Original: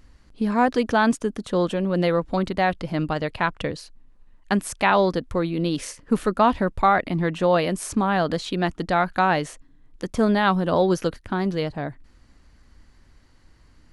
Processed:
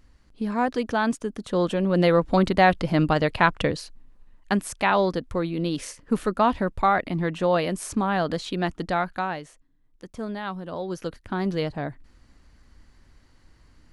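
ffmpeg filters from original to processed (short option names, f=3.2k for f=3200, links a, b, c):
-af "volume=15.5dB,afade=t=in:st=1.28:d=1.16:silence=0.375837,afade=t=out:st=3.55:d=1.12:silence=0.473151,afade=t=out:st=8.86:d=0.55:silence=0.316228,afade=t=in:st=10.85:d=0.69:silence=0.266073"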